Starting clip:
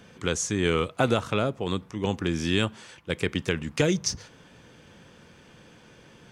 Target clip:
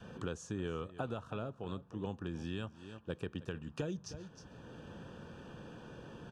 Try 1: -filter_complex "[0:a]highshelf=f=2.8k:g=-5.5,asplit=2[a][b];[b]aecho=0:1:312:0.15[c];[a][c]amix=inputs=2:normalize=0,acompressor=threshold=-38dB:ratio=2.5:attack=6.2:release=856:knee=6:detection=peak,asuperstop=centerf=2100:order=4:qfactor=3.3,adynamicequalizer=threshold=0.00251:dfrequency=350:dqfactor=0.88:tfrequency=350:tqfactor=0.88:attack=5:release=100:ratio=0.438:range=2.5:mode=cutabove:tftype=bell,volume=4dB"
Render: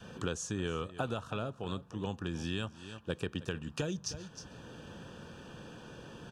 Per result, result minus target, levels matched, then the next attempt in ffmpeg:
4000 Hz band +5.0 dB; compressor: peak gain reduction -4 dB
-filter_complex "[0:a]highshelf=f=2.8k:g=-14.5,asplit=2[a][b];[b]aecho=0:1:312:0.15[c];[a][c]amix=inputs=2:normalize=0,acompressor=threshold=-38dB:ratio=2.5:attack=6.2:release=856:knee=6:detection=peak,asuperstop=centerf=2100:order=4:qfactor=3.3,adynamicequalizer=threshold=0.00251:dfrequency=350:dqfactor=0.88:tfrequency=350:tqfactor=0.88:attack=5:release=100:ratio=0.438:range=2.5:mode=cutabove:tftype=bell,volume=4dB"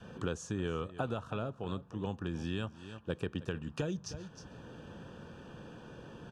compressor: peak gain reduction -4 dB
-filter_complex "[0:a]highshelf=f=2.8k:g=-14.5,asplit=2[a][b];[b]aecho=0:1:312:0.15[c];[a][c]amix=inputs=2:normalize=0,acompressor=threshold=-45dB:ratio=2.5:attack=6.2:release=856:knee=6:detection=peak,asuperstop=centerf=2100:order=4:qfactor=3.3,adynamicequalizer=threshold=0.00251:dfrequency=350:dqfactor=0.88:tfrequency=350:tqfactor=0.88:attack=5:release=100:ratio=0.438:range=2.5:mode=cutabove:tftype=bell,volume=4dB"

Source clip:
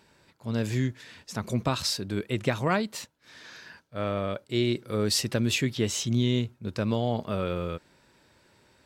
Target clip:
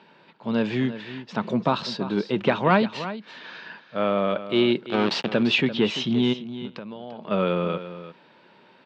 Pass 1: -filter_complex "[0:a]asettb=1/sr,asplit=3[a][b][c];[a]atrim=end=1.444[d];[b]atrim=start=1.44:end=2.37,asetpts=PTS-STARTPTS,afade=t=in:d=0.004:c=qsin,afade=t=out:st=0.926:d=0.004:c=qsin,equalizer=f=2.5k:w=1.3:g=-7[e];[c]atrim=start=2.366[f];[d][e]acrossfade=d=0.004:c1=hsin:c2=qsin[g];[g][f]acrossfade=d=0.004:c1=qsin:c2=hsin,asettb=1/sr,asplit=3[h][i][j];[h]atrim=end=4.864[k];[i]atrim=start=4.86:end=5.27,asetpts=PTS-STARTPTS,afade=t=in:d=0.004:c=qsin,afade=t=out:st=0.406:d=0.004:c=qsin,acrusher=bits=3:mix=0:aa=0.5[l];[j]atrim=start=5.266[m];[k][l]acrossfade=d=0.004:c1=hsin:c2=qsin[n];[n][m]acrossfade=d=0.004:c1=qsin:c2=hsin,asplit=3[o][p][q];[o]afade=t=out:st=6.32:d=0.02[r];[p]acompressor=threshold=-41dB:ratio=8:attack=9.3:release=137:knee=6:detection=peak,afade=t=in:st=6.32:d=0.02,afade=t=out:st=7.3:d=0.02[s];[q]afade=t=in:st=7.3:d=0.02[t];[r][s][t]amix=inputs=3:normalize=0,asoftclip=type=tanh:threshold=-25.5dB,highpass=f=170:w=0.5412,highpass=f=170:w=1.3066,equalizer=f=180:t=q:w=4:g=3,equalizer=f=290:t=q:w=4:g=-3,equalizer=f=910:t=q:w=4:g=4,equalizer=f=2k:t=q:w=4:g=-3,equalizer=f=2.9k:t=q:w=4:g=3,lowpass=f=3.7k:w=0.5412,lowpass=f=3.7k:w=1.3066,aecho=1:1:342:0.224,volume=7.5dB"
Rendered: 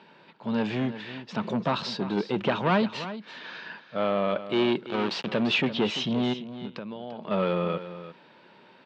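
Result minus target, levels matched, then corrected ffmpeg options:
soft clip: distortion +13 dB
-filter_complex "[0:a]asettb=1/sr,asplit=3[a][b][c];[a]atrim=end=1.444[d];[b]atrim=start=1.44:end=2.37,asetpts=PTS-STARTPTS,afade=t=in:d=0.004:c=qsin,afade=t=out:st=0.926:d=0.004:c=qsin,equalizer=f=2.5k:w=1.3:g=-7[e];[c]atrim=start=2.366[f];[d][e]acrossfade=d=0.004:c1=hsin:c2=qsin[g];[g][f]acrossfade=d=0.004:c1=qsin:c2=hsin,asettb=1/sr,asplit=3[h][i][j];[h]atrim=end=4.864[k];[i]atrim=start=4.86:end=5.27,asetpts=PTS-STARTPTS,afade=t=in:d=0.004:c=qsin,afade=t=out:st=0.406:d=0.004:c=qsin,acrusher=bits=3:mix=0:aa=0.5[l];[j]atrim=start=5.266[m];[k][l]acrossfade=d=0.004:c1=hsin:c2=qsin[n];[n][m]acrossfade=d=0.004:c1=qsin:c2=hsin,asplit=3[o][p][q];[o]afade=t=out:st=6.32:d=0.02[r];[p]acompressor=threshold=-41dB:ratio=8:attack=9.3:release=137:knee=6:detection=peak,afade=t=in:st=6.32:d=0.02,afade=t=out:st=7.3:d=0.02[s];[q]afade=t=in:st=7.3:d=0.02[t];[r][s][t]amix=inputs=3:normalize=0,asoftclip=type=tanh:threshold=-14.5dB,highpass=f=170:w=0.5412,highpass=f=170:w=1.3066,equalizer=f=180:t=q:w=4:g=3,equalizer=f=290:t=q:w=4:g=-3,equalizer=f=910:t=q:w=4:g=4,equalizer=f=2k:t=q:w=4:g=-3,equalizer=f=2.9k:t=q:w=4:g=3,lowpass=f=3.7k:w=0.5412,lowpass=f=3.7k:w=1.3066,aecho=1:1:342:0.224,volume=7.5dB"

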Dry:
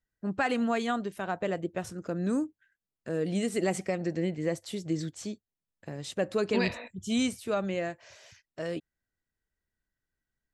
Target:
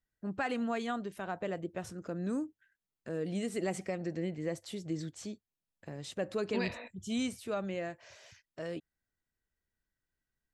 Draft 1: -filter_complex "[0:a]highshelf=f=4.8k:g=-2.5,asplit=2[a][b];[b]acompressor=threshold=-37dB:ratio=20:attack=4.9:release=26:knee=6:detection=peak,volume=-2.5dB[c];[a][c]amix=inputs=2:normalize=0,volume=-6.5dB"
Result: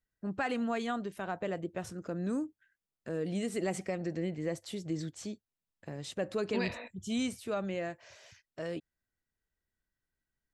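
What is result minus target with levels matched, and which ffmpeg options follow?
compressor: peak gain reduction -7.5 dB
-filter_complex "[0:a]highshelf=f=4.8k:g=-2.5,asplit=2[a][b];[b]acompressor=threshold=-45dB:ratio=20:attack=4.9:release=26:knee=6:detection=peak,volume=-2.5dB[c];[a][c]amix=inputs=2:normalize=0,volume=-6.5dB"

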